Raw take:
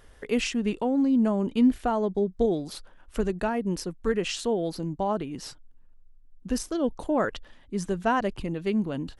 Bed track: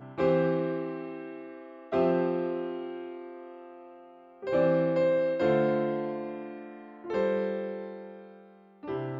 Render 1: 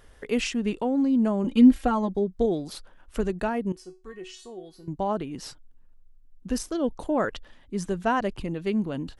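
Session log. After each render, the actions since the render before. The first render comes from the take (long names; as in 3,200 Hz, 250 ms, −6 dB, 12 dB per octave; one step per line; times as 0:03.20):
0:01.44–0:02.17: comb filter 3.7 ms, depth 96%
0:03.72–0:04.88: tuned comb filter 370 Hz, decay 0.28 s, mix 90%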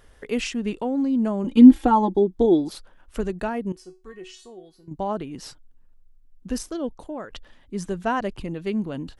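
0:01.57–0:02.69: hollow resonant body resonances 330/860/3,400 Hz, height 13 dB, ringing for 30 ms
0:04.29–0:04.91: fade out, to −7.5 dB
0:06.62–0:07.30: fade out, to −14 dB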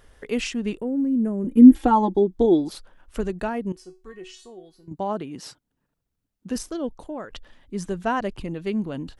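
0:00.77–0:01.75: drawn EQ curve 460 Hz 0 dB, 740 Hz −13 dB, 1,200 Hz −12 dB, 1,800 Hz −6 dB, 4,000 Hz −24 dB, 6,000 Hz −14 dB, 11,000 Hz +5 dB
0:04.92–0:06.56: high-pass filter 110 Hz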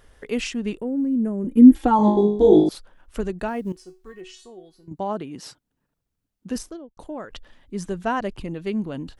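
0:01.97–0:02.69: flutter between parallel walls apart 3.3 metres, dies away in 0.6 s
0:03.48–0:04.21: log-companded quantiser 8 bits
0:06.54–0:06.97: fade out and dull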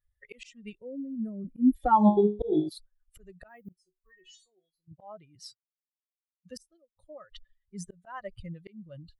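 spectral dynamics exaggerated over time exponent 2
volume swells 380 ms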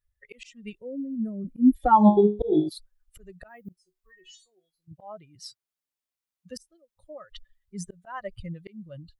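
automatic gain control gain up to 4 dB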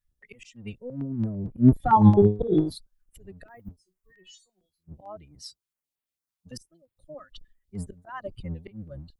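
sub-octave generator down 1 octave, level −1 dB
notch on a step sequencer 8.9 Hz 440–6,000 Hz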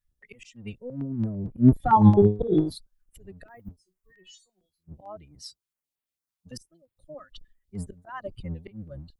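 no processing that can be heard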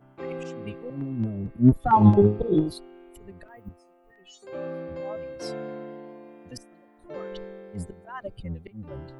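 mix in bed track −10 dB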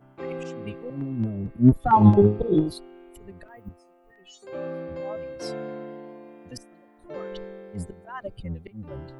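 level +1 dB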